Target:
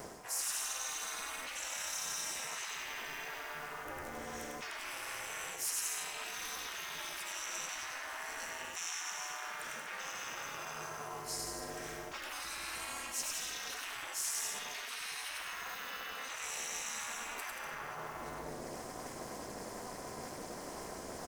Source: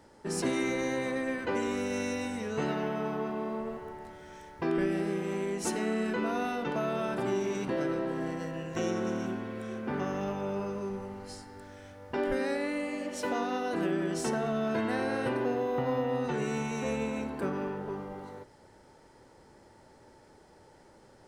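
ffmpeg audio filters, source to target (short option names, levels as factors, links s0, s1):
-filter_complex "[0:a]asplit=2[s0][s1];[s1]aecho=0:1:100|180|244|295.2|336.2:0.631|0.398|0.251|0.158|0.1[s2];[s0][s2]amix=inputs=2:normalize=0,afftfilt=real='re*lt(hypot(re,im),0.0316)':imag='im*lt(hypot(re,im),0.0316)':win_size=1024:overlap=0.75,asplit=3[s3][s4][s5];[s4]asetrate=55563,aresample=44100,atempo=0.793701,volume=0.316[s6];[s5]asetrate=66075,aresample=44100,atempo=0.66742,volume=0.141[s7];[s3][s6][s7]amix=inputs=3:normalize=0,highpass=160,areverse,acompressor=threshold=0.00178:ratio=6,areverse,bandreject=f=60:t=h:w=6,bandreject=f=120:t=h:w=6,bandreject=f=180:t=h:w=6,bandreject=f=240:t=h:w=6,aeval=exprs='val(0)*sin(2*PI*140*n/s)':c=same,aexciter=amount=1.6:drive=8.4:freq=5500,volume=6.68"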